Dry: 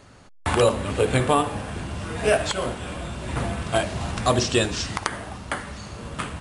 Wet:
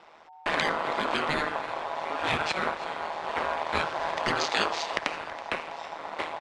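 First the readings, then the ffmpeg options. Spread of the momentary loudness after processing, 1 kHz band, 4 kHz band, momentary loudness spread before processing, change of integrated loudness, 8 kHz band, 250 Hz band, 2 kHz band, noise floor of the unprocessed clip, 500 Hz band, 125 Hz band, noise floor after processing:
8 LU, −1.0 dB, −3.0 dB, 12 LU, −5.0 dB, −11.5 dB, −10.0 dB, +0.5 dB, −47 dBFS, −8.5 dB, −17.5 dB, −50 dBFS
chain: -filter_complex "[0:a]aeval=exprs='val(0)*sin(2*PI*830*n/s)':channel_layout=same,acrossover=split=360 5200:gain=0.0708 1 0.178[link_01][link_02][link_03];[link_01][link_02][link_03]amix=inputs=3:normalize=0,aeval=exprs='val(0)*sin(2*PI*79*n/s)':channel_layout=same,lowshelf=frequency=240:gain=9.5,asplit=2[link_04][link_05];[link_05]aeval=exprs='sgn(val(0))*max(abs(val(0))-0.00891,0)':channel_layout=same,volume=-9.5dB[link_06];[link_04][link_06]amix=inputs=2:normalize=0,afftfilt=real='re*lt(hypot(re,im),0.2)':imag='im*lt(hypot(re,im),0.2)':win_size=1024:overlap=0.75,lowpass=7700,asplit=2[link_07][link_08];[link_08]asplit=3[link_09][link_10][link_11];[link_09]adelay=326,afreqshift=69,volume=-17.5dB[link_12];[link_10]adelay=652,afreqshift=138,volume=-26.1dB[link_13];[link_11]adelay=978,afreqshift=207,volume=-34.8dB[link_14];[link_12][link_13][link_14]amix=inputs=3:normalize=0[link_15];[link_07][link_15]amix=inputs=2:normalize=0,volume=2.5dB"

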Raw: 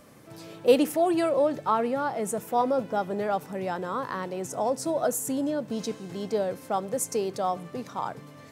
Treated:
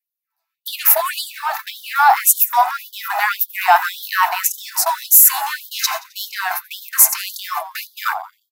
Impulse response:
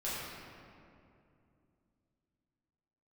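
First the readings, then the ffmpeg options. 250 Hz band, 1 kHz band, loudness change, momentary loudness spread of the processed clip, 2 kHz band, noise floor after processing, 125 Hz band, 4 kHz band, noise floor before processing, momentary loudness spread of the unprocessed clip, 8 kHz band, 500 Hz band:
below −40 dB, +11.5 dB, +12.0 dB, 15 LU, +19.0 dB, −81 dBFS, below −40 dB, +16.0 dB, −48 dBFS, 11 LU, +19.0 dB, −5.0 dB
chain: -filter_complex "[0:a]adynamicequalizer=threshold=0.0112:dfrequency=500:dqfactor=3.4:tfrequency=500:tqfactor=3.4:attack=5:release=100:ratio=0.375:range=2.5:mode=boostabove:tftype=bell,bandreject=frequency=3200:width=8.3,acrossover=split=300[link_01][link_02];[link_02]acompressor=threshold=-25dB:ratio=10[link_03];[link_01][link_03]amix=inputs=2:normalize=0,agate=range=-56dB:threshold=-33dB:ratio=16:detection=peak,aexciter=amount=11.7:drive=3.8:freq=12000,highshelf=frequency=2200:gain=-9,asplit=5[link_04][link_05][link_06][link_07][link_08];[link_05]adelay=88,afreqshift=-72,volume=-22dB[link_09];[link_06]adelay=176,afreqshift=-144,volume=-27dB[link_10];[link_07]adelay=264,afreqshift=-216,volume=-32.1dB[link_11];[link_08]adelay=352,afreqshift=-288,volume=-37.1dB[link_12];[link_04][link_09][link_10][link_11][link_12]amix=inputs=5:normalize=0,apsyclip=34.5dB,bandreject=frequency=60:width_type=h:width=6,bandreject=frequency=120:width_type=h:width=6,bandreject=frequency=180:width_type=h:width=6,bandreject=frequency=240:width_type=h:width=6,bandreject=frequency=300:width_type=h:width=6,bandreject=frequency=360:width_type=h:width=6,bandreject=frequency=420:width_type=h:width=6,afftfilt=real='re*gte(b*sr/1024,640*pow(3100/640,0.5+0.5*sin(2*PI*1.8*pts/sr)))':imag='im*gte(b*sr/1024,640*pow(3100/640,0.5+0.5*sin(2*PI*1.8*pts/sr)))':win_size=1024:overlap=0.75,volume=-3dB"

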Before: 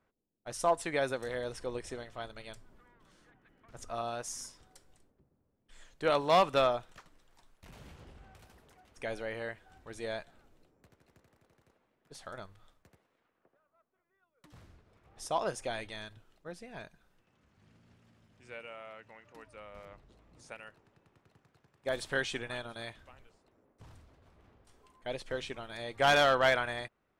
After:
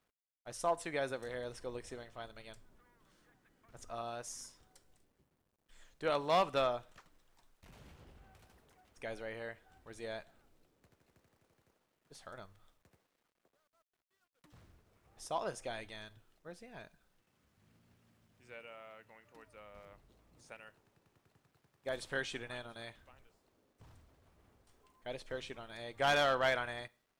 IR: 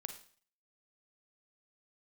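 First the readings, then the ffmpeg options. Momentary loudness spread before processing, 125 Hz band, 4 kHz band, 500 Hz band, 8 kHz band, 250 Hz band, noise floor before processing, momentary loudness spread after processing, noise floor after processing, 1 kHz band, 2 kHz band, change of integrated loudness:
24 LU, −5.5 dB, −5.5 dB, −5.5 dB, −5.5 dB, −5.5 dB, −78 dBFS, 24 LU, −82 dBFS, −5.5 dB, −5.5 dB, −5.0 dB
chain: -filter_complex "[0:a]asplit=2[link_01][link_02];[1:a]atrim=start_sample=2205,asetrate=48510,aresample=44100[link_03];[link_02][link_03]afir=irnorm=-1:irlink=0,volume=-9dB[link_04];[link_01][link_04]amix=inputs=2:normalize=0,acrusher=bits=11:mix=0:aa=0.000001,volume=-7dB"

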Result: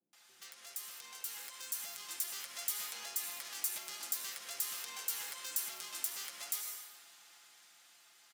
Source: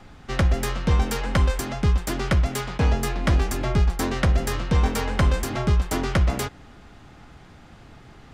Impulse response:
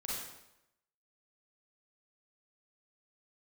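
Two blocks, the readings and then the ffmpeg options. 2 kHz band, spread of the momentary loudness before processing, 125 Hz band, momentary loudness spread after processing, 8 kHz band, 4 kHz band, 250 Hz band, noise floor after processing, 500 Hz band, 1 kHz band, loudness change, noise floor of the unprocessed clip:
−17.5 dB, 2 LU, below −40 dB, 16 LU, −2.5 dB, −9.0 dB, below −40 dB, −64 dBFS, −32.0 dB, −22.5 dB, −15.5 dB, −48 dBFS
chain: -filter_complex "[0:a]acrossover=split=370[link_01][link_02];[link_01]asoftclip=type=hard:threshold=-20.5dB[link_03];[link_03][link_02]amix=inputs=2:normalize=0,highpass=270,aecho=1:1:5.8:0.38,asplit=2[link_04][link_05];[1:a]atrim=start_sample=2205,asetrate=39249,aresample=44100[link_06];[link_05][link_06]afir=irnorm=-1:irlink=0,volume=-10.5dB[link_07];[link_04][link_07]amix=inputs=2:normalize=0,acompressor=threshold=-29dB:ratio=6,asoftclip=type=tanh:threshold=-31dB,crystalizer=i=3.5:c=0,highshelf=frequency=3600:gain=-8.5,acrossover=split=360[link_08][link_09];[link_09]adelay=130[link_10];[link_08][link_10]amix=inputs=2:normalize=0,alimiter=level_in=2dB:limit=-24dB:level=0:latency=1:release=155,volume=-2dB,aderivative,dynaudnorm=framelen=200:gausssize=17:maxgain=7.5dB,volume=-4.5dB"

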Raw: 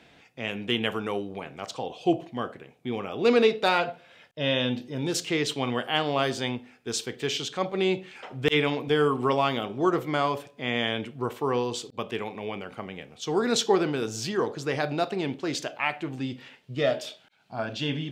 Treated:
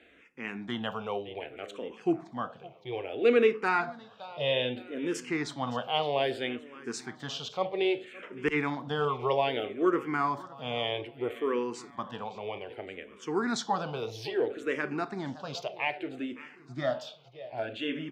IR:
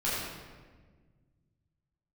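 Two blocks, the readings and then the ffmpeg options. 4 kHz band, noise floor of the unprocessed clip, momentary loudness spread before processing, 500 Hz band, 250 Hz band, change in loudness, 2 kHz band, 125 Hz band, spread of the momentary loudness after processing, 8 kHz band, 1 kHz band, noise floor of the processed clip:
−6.5 dB, −57 dBFS, 12 LU, −3.5 dB, −4.5 dB, −4.0 dB, −3.5 dB, −7.5 dB, 13 LU, −10.0 dB, −3.0 dB, −55 dBFS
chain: -filter_complex "[0:a]bass=frequency=250:gain=-5,treble=frequency=4000:gain=-10,aecho=1:1:565|1130|1695|2260:0.119|0.0606|0.0309|0.0158,asplit=2[link_01][link_02];[link_02]afreqshift=-0.62[link_03];[link_01][link_03]amix=inputs=2:normalize=1"

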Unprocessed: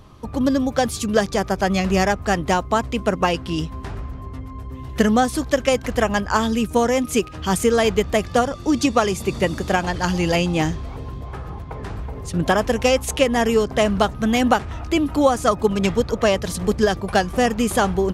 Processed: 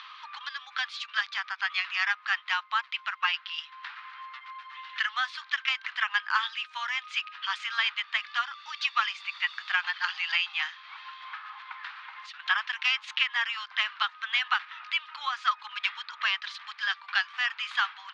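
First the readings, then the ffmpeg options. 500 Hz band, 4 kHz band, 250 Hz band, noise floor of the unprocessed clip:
below −40 dB, −1.0 dB, below −40 dB, −34 dBFS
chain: -af "highpass=frequency=1300:width=0.5412,highpass=frequency=1300:width=1.3066,acompressor=mode=upward:threshold=-33dB:ratio=2.5,asuperpass=centerf=1900:order=8:qfactor=0.58"

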